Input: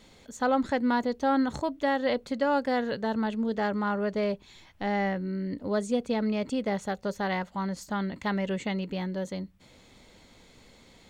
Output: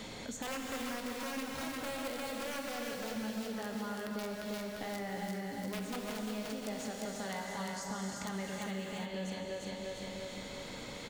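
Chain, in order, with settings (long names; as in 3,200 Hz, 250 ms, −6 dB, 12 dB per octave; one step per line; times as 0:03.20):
notch filter 370 Hz, Q 12
wrap-around overflow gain 19 dB
repeating echo 349 ms, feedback 41%, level −7 dB
downward compressor 3 to 1, threshold −43 dBFS, peak gain reduction 16 dB
brickwall limiter −34 dBFS, peak gain reduction 6 dB
0:06.66–0:08.43: parametric band 6,800 Hz +8 dB 1.7 octaves
reverb whose tail is shaped and stops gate 440 ms flat, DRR 0 dB
multiband upward and downward compressor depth 70%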